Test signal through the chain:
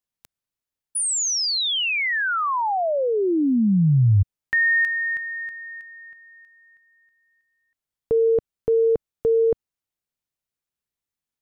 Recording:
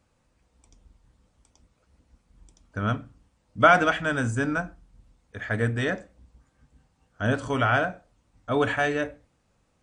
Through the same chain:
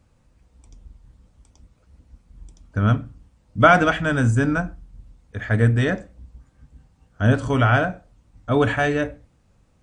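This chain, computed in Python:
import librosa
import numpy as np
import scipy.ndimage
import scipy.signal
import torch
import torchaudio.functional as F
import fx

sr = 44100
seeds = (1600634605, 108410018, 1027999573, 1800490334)

y = fx.low_shelf(x, sr, hz=220.0, db=10.0)
y = F.gain(torch.from_numpy(y), 2.5).numpy()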